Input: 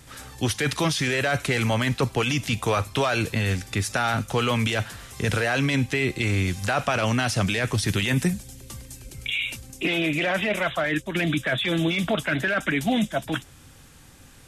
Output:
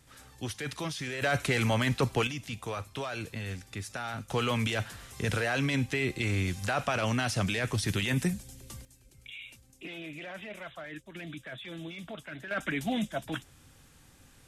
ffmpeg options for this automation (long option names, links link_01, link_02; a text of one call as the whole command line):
ffmpeg -i in.wav -af "asetnsamples=nb_out_samples=441:pad=0,asendcmd='1.22 volume volume -4dB;2.27 volume volume -13dB;4.3 volume volume -6dB;8.85 volume volume -18dB;12.51 volume volume -8dB',volume=-12dB" out.wav